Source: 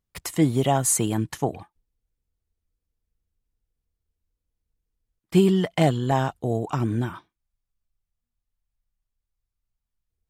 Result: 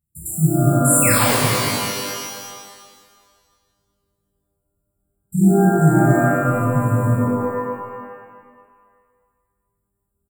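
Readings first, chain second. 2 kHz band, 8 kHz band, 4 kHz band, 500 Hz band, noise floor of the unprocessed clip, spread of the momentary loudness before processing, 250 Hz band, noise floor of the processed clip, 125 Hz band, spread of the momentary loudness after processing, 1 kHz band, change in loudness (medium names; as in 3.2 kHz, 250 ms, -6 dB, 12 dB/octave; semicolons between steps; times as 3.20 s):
+12.5 dB, +8.0 dB, +9.0 dB, +5.0 dB, -84 dBFS, 9 LU, +6.5 dB, -75 dBFS, +8.5 dB, 16 LU, +7.5 dB, +6.5 dB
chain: rattle on loud lows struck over -29 dBFS, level -14 dBFS; high-pass 67 Hz 12 dB/octave; peaking EQ 400 Hz -8.5 dB 1.2 oct; in parallel at +1 dB: peak limiter -19 dBFS, peak gain reduction 9.5 dB; on the sum: brick-wall FIR band-stop 220–7100 Hz; painted sound fall, 1.02–1.35 s, 360–2800 Hz -26 dBFS; frequency-shifting echo 106 ms, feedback 49%, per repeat +36 Hz, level -19 dB; pitch-shifted reverb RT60 1.7 s, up +12 st, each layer -2 dB, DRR -6.5 dB; trim -2 dB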